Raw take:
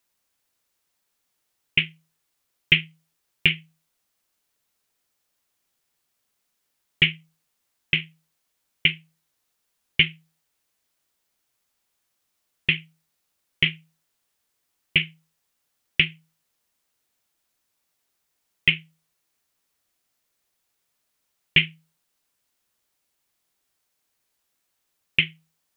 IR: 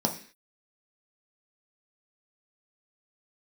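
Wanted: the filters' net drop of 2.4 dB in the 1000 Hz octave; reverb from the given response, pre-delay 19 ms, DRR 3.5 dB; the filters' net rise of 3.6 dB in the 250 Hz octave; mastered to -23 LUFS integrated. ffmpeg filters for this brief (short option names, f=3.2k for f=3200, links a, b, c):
-filter_complex "[0:a]equalizer=f=250:t=o:g=8,equalizer=f=1k:t=o:g=-4,asplit=2[a][b];[1:a]atrim=start_sample=2205,adelay=19[c];[b][c]afir=irnorm=-1:irlink=0,volume=-12.5dB[d];[a][d]amix=inputs=2:normalize=0,volume=-0.5dB"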